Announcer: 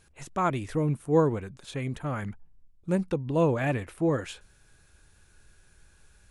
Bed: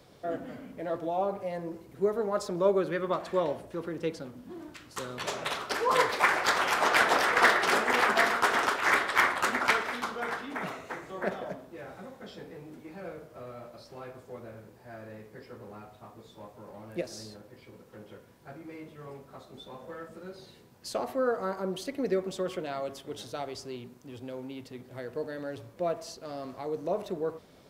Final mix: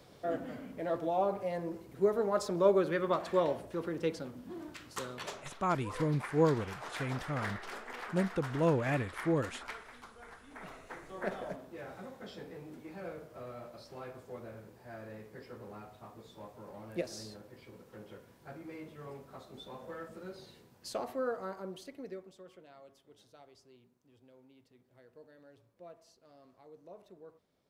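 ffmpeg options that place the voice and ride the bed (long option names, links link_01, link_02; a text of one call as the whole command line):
ffmpeg -i stem1.wav -i stem2.wav -filter_complex "[0:a]adelay=5250,volume=-5dB[link_01];[1:a]volume=16dB,afade=type=out:start_time=4.89:duration=0.61:silence=0.125893,afade=type=in:start_time=10.41:duration=1.26:silence=0.141254,afade=type=out:start_time=20.31:duration=2.03:silence=0.112202[link_02];[link_01][link_02]amix=inputs=2:normalize=0" out.wav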